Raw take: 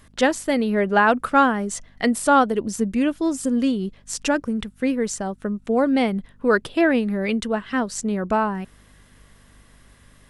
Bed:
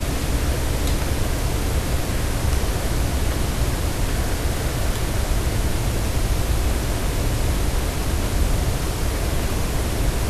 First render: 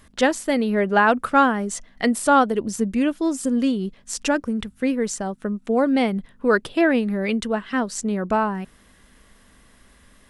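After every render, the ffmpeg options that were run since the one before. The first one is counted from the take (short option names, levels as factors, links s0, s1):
-af "bandreject=f=50:t=h:w=4,bandreject=f=100:t=h:w=4,bandreject=f=150:t=h:w=4"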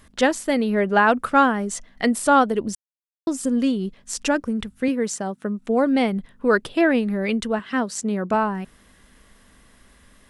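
-filter_complex "[0:a]asettb=1/sr,asplit=3[s0][s1][s2];[s0]atrim=end=4.884[s3];[s1]atrim=start=4.88:end=5.59,asetpts=PTS-STARTPTS,afade=t=in:d=0.004:c=qsin,afade=t=out:st=0.706:d=0.004:c=qsin,highpass=120[s4];[s2]atrim=start=5.586[s5];[s3][s4]acrossfade=d=0.004:c1=hsin:c2=qsin[s6];[s6][s5]acrossfade=d=0.004:c1=qsin:c2=hsin,asettb=1/sr,asplit=3[s7][s8][s9];[s7]atrim=end=7.594[s10];[s8]atrim=start=7.59:end=8.34,asetpts=PTS-STARTPTS,afade=t=in:d=0.004:c=qsin,afade=t=out:st=0.746:d=0.004:c=qsin,highpass=92[s11];[s9]atrim=start=8.336[s12];[s10][s11]acrossfade=d=0.004:c1=hsin:c2=qsin[s13];[s13][s12]acrossfade=d=0.004:c1=qsin:c2=hsin,asplit=3[s14][s15][s16];[s14]atrim=end=2.75,asetpts=PTS-STARTPTS,afade=t=out:st=2.746:d=0.004:c=hsin[s17];[s15]atrim=start=2.75:end=3.27,asetpts=PTS-STARTPTS,volume=0[s18];[s16]atrim=start=3.27,asetpts=PTS-STARTPTS,afade=t=in:d=0.004:c=hsin[s19];[s17][s18][s19]concat=n=3:v=0:a=1"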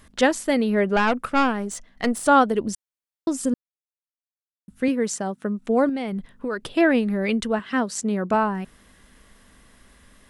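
-filter_complex "[0:a]asettb=1/sr,asplit=3[s0][s1][s2];[s0]atrim=end=0.964[s3];[s1]atrim=start=0.96:end=2.26,asetpts=PTS-STARTPTS,afade=t=in:d=0.004:c=qsin,afade=t=out:st=1.296:d=0.004:c=qsin,aeval=exprs='(tanh(4.47*val(0)+0.65)-tanh(0.65))/4.47':c=same[s4];[s2]atrim=start=2.256[s5];[s3][s4]acrossfade=d=0.004:c1=hsin:c2=qsin[s6];[s6][s5]acrossfade=d=0.004:c1=qsin:c2=hsin,asettb=1/sr,asplit=3[s7][s8][s9];[s7]atrim=end=5.894[s10];[s8]atrim=start=5.89:end=6.67,asetpts=PTS-STARTPTS,afade=t=in:d=0.004:c=qsin,afade=t=out:st=0.776:d=0.004:c=qsin,acompressor=threshold=0.0631:ratio=6:attack=3.2:release=140:knee=1:detection=peak[s11];[s9]atrim=start=6.666[s12];[s10][s11]acrossfade=d=0.004:c1=hsin:c2=qsin[s13];[s13][s12]acrossfade=d=0.004:c1=qsin:c2=hsin,asplit=3[s14][s15][s16];[s14]atrim=end=3.54,asetpts=PTS-STARTPTS,afade=t=out:st=3.536:d=0.004:c=hsin[s17];[s15]atrim=start=3.54:end=4.68,asetpts=PTS-STARTPTS,volume=0[s18];[s16]atrim=start=4.68,asetpts=PTS-STARTPTS,afade=t=in:d=0.004:c=hsin[s19];[s17][s18][s19]concat=n=3:v=0:a=1"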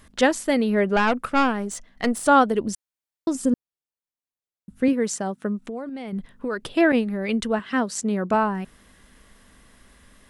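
-filter_complex "[0:a]asettb=1/sr,asplit=3[s0][s1][s2];[s0]atrim=end=3.354[s3];[s1]atrim=start=3.35:end=4.93,asetpts=PTS-STARTPTS,afade=t=in:d=0.004:c=qsin,afade=t=out:st=1.576:d=0.004:c=qsin,tiltshelf=f=840:g=3[s4];[s2]atrim=start=4.926[s5];[s3][s4]acrossfade=d=0.004:c1=hsin:c2=qsin[s6];[s6][s5]acrossfade=d=0.004:c1=qsin:c2=hsin,asettb=1/sr,asplit=3[s7][s8][s9];[s7]atrim=end=5.634[s10];[s8]atrim=start=5.63:end=6.13,asetpts=PTS-STARTPTS,afade=t=in:d=0.004:c=qsin,afade=t=out:st=0.496:d=0.004:c=qsin,acompressor=threshold=0.0355:ratio=10:attack=3.2:release=140:knee=1:detection=peak[s11];[s9]atrim=start=6.126[s12];[s10][s11]acrossfade=d=0.004:c1=hsin:c2=qsin[s13];[s13][s12]acrossfade=d=0.004:c1=qsin:c2=hsin,asettb=1/sr,asplit=3[s14][s15][s16];[s14]atrim=end=6.924[s17];[s15]atrim=start=6.92:end=7.34,asetpts=PTS-STARTPTS,afade=t=in:d=0.004:c=qsin,afade=t=out:st=0.416:d=0.004:c=qsin,agate=range=0.0224:threshold=0.0891:ratio=3:release=100:detection=peak[s18];[s16]atrim=start=7.336[s19];[s17][s18]acrossfade=d=0.004:c1=hsin:c2=qsin[s20];[s20][s19]acrossfade=d=0.004:c1=qsin:c2=hsin"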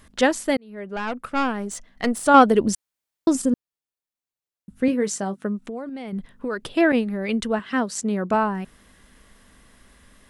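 -filter_complex "[0:a]asettb=1/sr,asplit=3[s0][s1][s2];[s0]atrim=end=2.344[s3];[s1]atrim=start=2.34:end=3.42,asetpts=PTS-STARTPTS,afade=t=in:d=0.004:c=qsin,afade=t=out:st=1.076:d=0.004:c=qsin,acontrast=38[s4];[s2]atrim=start=3.416[s5];[s3][s4]acrossfade=d=0.004:c1=hsin:c2=qsin[s6];[s6][s5]acrossfade=d=0.004:c1=qsin:c2=hsin,asettb=1/sr,asplit=3[s7][s8][s9];[s7]atrim=end=4.864[s10];[s8]atrim=start=4.86:end=5.44,asetpts=PTS-STARTPTS,afade=t=in:d=0.004:c=qsin,afade=t=out:st=0.576:d=0.004:c=qsin,asplit=2[s11][s12];[s12]adelay=20,volume=0.316[s13];[s11][s13]amix=inputs=2:normalize=0,atrim=end_sample=25578[s14];[s9]atrim=start=5.436[s15];[s10][s14]acrossfade=d=0.004:c1=hsin:c2=qsin[s16];[s16][s15]acrossfade=d=0.004:c1=qsin:c2=hsin,asplit=2[s17][s18];[s17]atrim=end=0.57,asetpts=PTS-STARTPTS,afade=t=out:st=0.566:d=0.004:c=hsin[s19];[s18]atrim=start=0.57,asetpts=PTS-STARTPTS,afade=t=in:d=1.19[s20];[s19][s20]concat=n=2:v=0:a=1"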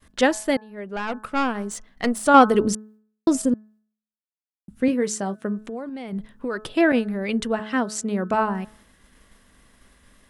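-af "agate=range=0.0224:threshold=0.00355:ratio=3:detection=peak,bandreject=f=214.9:t=h:w=4,bandreject=f=429.8:t=h:w=4,bandreject=f=644.7:t=h:w=4,bandreject=f=859.6:t=h:w=4,bandreject=f=1074.5:t=h:w=4,bandreject=f=1289.4:t=h:w=4,bandreject=f=1504.3:t=h:w=4,bandreject=f=1719.2:t=h:w=4"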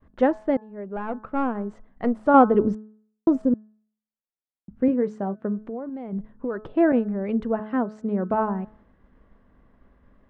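-af "lowpass=1000"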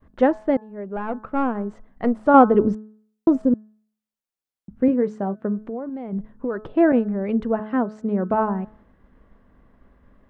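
-af "volume=1.33"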